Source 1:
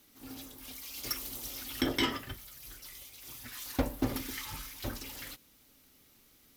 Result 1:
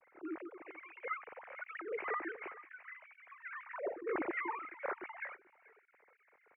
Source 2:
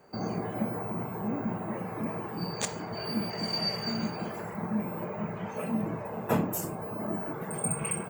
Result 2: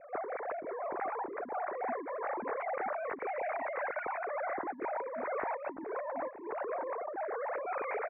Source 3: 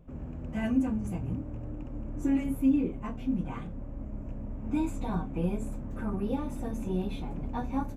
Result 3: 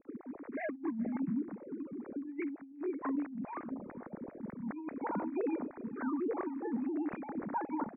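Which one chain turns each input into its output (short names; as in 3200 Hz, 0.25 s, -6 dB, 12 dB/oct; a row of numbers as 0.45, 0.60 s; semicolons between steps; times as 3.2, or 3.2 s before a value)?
sine-wave speech; steep low-pass 2300 Hz 72 dB/oct; on a send: echo 0.434 s -21 dB; on the sum: negative-ratio compressor -38 dBFS, ratio -1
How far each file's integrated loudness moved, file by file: -5.0, -4.5, -6.0 LU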